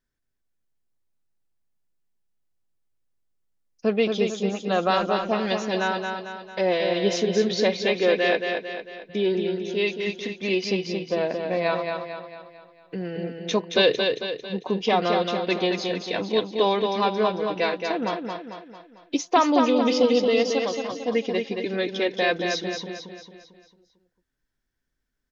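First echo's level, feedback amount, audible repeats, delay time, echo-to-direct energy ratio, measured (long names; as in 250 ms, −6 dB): −5.0 dB, 48%, 5, 224 ms, −4.0 dB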